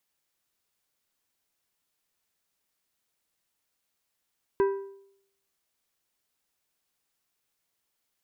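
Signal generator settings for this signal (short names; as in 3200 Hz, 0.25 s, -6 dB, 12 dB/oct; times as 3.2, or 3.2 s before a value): metal hit plate, lowest mode 393 Hz, decay 0.71 s, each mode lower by 9 dB, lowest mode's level -18 dB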